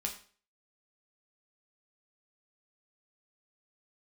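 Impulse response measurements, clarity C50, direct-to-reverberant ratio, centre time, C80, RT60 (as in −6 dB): 10.0 dB, 1.0 dB, 16 ms, 13.5 dB, 0.45 s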